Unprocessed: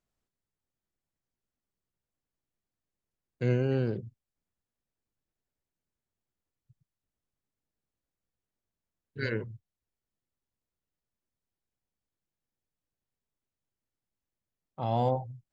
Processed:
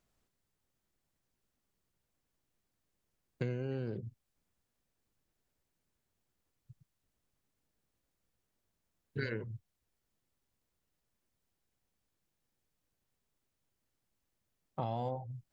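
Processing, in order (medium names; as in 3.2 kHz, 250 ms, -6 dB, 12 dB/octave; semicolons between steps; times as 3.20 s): compression 12:1, threshold -40 dBFS, peak gain reduction 18.5 dB; trim +6.5 dB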